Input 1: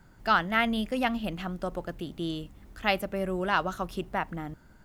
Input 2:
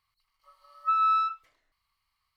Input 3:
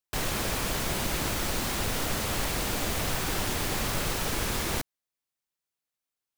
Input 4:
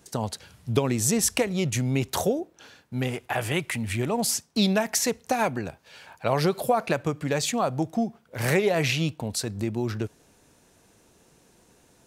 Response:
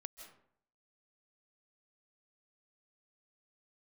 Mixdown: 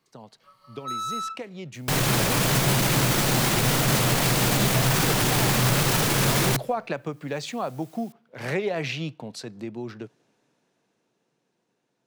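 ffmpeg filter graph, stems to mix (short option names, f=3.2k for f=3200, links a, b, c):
-filter_complex "[1:a]asoftclip=type=tanh:threshold=-32.5dB,volume=3dB[a];[2:a]equalizer=f=130:t=o:w=0.22:g=7.5,acompressor=mode=upward:threshold=-51dB:ratio=2.5,adelay=1750,volume=0dB,asplit=2[b][c];[c]volume=-11dB[d];[3:a]acrossover=split=180 5600:gain=0.251 1 0.2[e][f][g];[e][f][g]amix=inputs=3:normalize=0,volume=-16dB,asplit=2[h][i];[i]volume=-16dB[j];[b][h]amix=inputs=2:normalize=0,dynaudnorm=f=200:g=21:m=12dB,alimiter=limit=-13.5dB:level=0:latency=1:release=16,volume=0dB[k];[4:a]atrim=start_sample=2205[l];[d][j]amix=inputs=2:normalize=0[m];[m][l]afir=irnorm=-1:irlink=0[n];[a][k][n]amix=inputs=3:normalize=0,lowshelf=f=100:t=q:w=3:g=-7"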